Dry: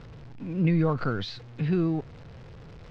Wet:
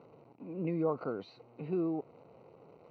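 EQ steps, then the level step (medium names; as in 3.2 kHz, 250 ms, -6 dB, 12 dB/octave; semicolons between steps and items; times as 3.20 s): boxcar filter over 26 samples; high-pass 390 Hz 12 dB/octave; 0.0 dB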